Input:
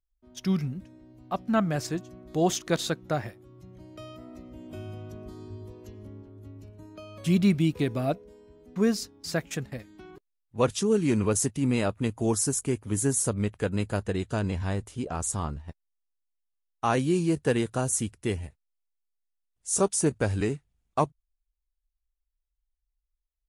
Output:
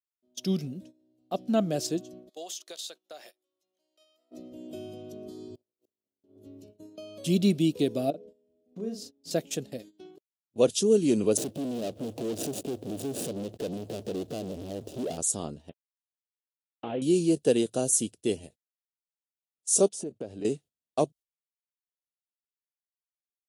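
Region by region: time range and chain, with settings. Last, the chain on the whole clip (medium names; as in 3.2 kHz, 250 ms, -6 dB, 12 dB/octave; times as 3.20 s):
2.29–4.31 s: high-pass 1 kHz + compression 12:1, threshold -37 dBFS
5.55–6.24 s: zero-crossing glitches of -46 dBFS + inverted gate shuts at -38 dBFS, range -35 dB + waveshaping leveller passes 2
8.10–9.31 s: treble shelf 2.5 kHz -12 dB + compression 2.5:1, threshold -39 dBFS + doubling 40 ms -4.5 dB
11.37–15.18 s: median filter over 41 samples + compression 12:1, threshold -37 dBFS + waveshaping leveller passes 5
15.69–17.02 s: CVSD coder 16 kbps + compression 4:1, threshold -28 dBFS
19.89–20.45 s: low-pass 1.4 kHz 6 dB/octave + bass shelf 73 Hz -8.5 dB + compression 16:1, threshold -32 dBFS
whole clip: gate -46 dBFS, range -17 dB; high-pass 250 Hz 12 dB/octave; high-order bell 1.4 kHz -15 dB; trim +3.5 dB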